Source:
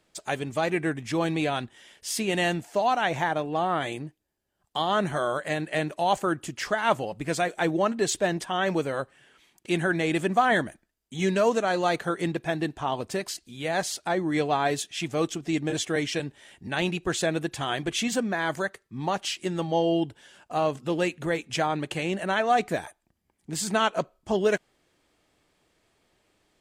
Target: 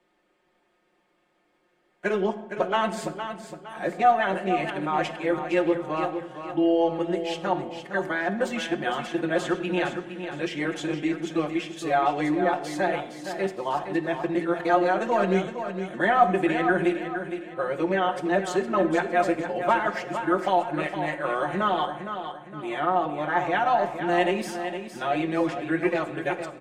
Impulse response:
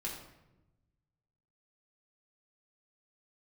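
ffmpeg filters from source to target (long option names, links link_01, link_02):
-filter_complex "[0:a]areverse,aeval=exprs='0.335*(cos(1*acos(clip(val(0)/0.335,-1,1)))-cos(1*PI/2))+0.0106*(cos(2*acos(clip(val(0)/0.335,-1,1)))-cos(2*PI/2))':channel_layout=same,acrossover=split=210 2700:gain=0.224 1 0.224[link_01][link_02][link_03];[link_01][link_02][link_03]amix=inputs=3:normalize=0,aecho=1:1:5.6:0.71,aecho=1:1:462|924|1386|1848:0.355|0.135|0.0512|0.0195,asplit=2[link_04][link_05];[1:a]atrim=start_sample=2205,asetrate=37926,aresample=44100[link_06];[link_05][link_06]afir=irnorm=-1:irlink=0,volume=-7.5dB[link_07];[link_04][link_07]amix=inputs=2:normalize=0,volume=-2.5dB"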